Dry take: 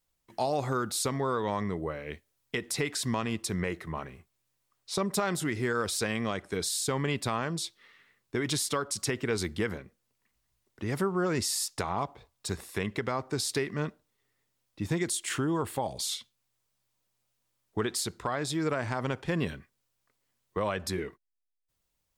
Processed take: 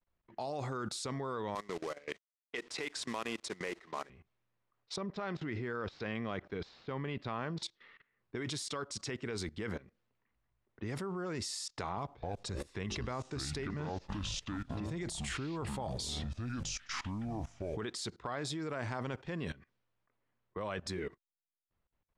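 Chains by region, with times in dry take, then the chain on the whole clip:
1.55–4.1 HPF 350 Hz + companded quantiser 4-bit + transient shaper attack +2 dB, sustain -4 dB
4.96–7.63 median filter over 5 samples + air absorption 150 m
11.97–17.78 low shelf 110 Hz +10.5 dB + upward compressor, threshold -38 dBFS + echoes that change speed 0.261 s, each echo -6 st, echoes 3, each echo -6 dB
whole clip: level quantiser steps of 20 dB; LPF 7600 Hz 12 dB/oct; low-pass opened by the level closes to 1900 Hz, open at -36.5 dBFS; gain +2 dB

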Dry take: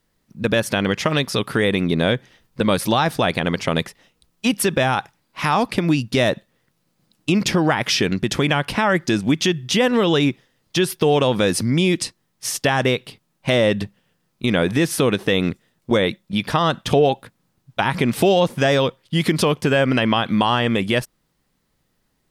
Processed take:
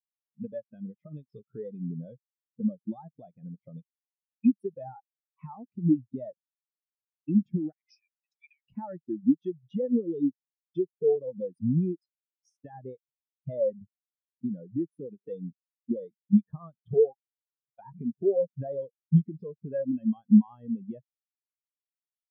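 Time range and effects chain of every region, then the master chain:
7.72–8.67 steep high-pass 2100 Hz + bell 3200 Hz -10.5 dB 0.38 oct
whole clip: compressor 5:1, threshold -24 dBFS; spectral expander 4:1

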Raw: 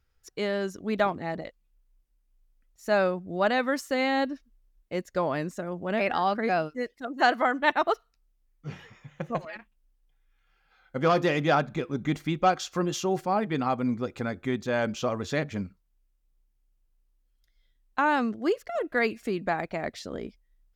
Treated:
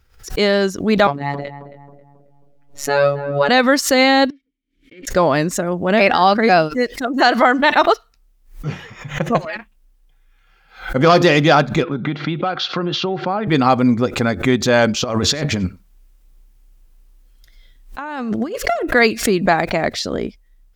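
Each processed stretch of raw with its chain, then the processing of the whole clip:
1.07–3.49 high shelf 6000 Hz -11 dB + robotiser 142 Hz + darkening echo 0.27 s, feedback 47%, low-pass 1100 Hz, level -11 dB
4.3–5.07 minimum comb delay 2.2 ms + vowel filter i + compressor 10:1, threshold -53 dBFS
11.83–13.48 bell 1400 Hz +7 dB 0.21 oct + compressor 16:1, threshold -28 dBFS + elliptic band-pass 130–3900 Hz
15.04–18.83 negative-ratio compressor -35 dBFS + echo 94 ms -22.5 dB
whole clip: dynamic EQ 4600 Hz, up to +7 dB, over -50 dBFS, Q 1.5; maximiser +14.5 dB; backwards sustainer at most 140 dB/s; gain -1.5 dB

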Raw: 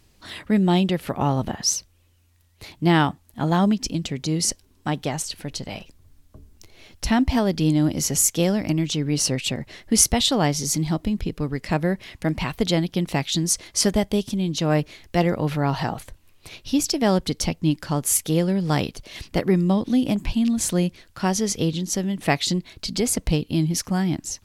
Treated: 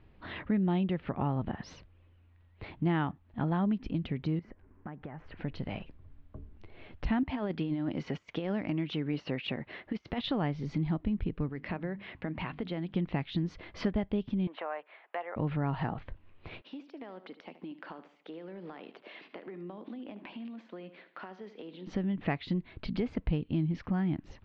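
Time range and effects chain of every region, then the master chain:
4.39–5.37 resonant high shelf 2600 Hz -12.5 dB, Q 1.5 + compressor 8:1, threshold -38 dBFS
7.23–10.24 HPF 370 Hz 6 dB/oct + negative-ratio compressor -25 dBFS, ratio -0.5
11.49–12.94 HPF 190 Hz 6 dB/oct + compressor 2.5:1, threshold -29 dBFS + notches 50/100/150/200/250/300 Hz
14.47–15.36 HPF 660 Hz 24 dB/oct + tape spacing loss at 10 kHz 38 dB + three-band squash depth 70%
16.61–21.87 Bessel high-pass 380 Hz, order 8 + compressor 16:1, threshold -38 dBFS + feedback echo 75 ms, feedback 41%, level -14 dB
whole clip: Bessel low-pass 1900 Hz, order 6; compressor 2:1, threshold -32 dBFS; dynamic EQ 600 Hz, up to -4 dB, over -45 dBFS, Q 0.97

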